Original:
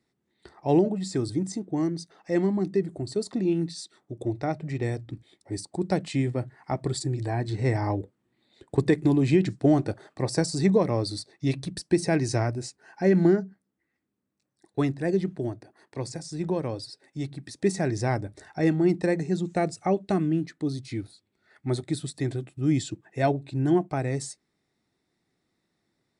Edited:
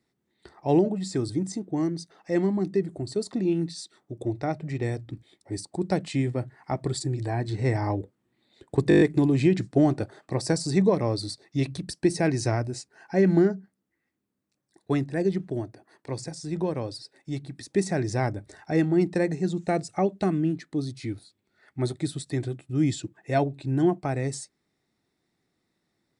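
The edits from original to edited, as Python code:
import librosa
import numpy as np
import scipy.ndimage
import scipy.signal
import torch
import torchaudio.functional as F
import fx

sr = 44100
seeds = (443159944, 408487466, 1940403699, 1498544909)

y = fx.edit(x, sr, fx.stutter(start_s=8.89, slice_s=0.02, count=7), tone=tone)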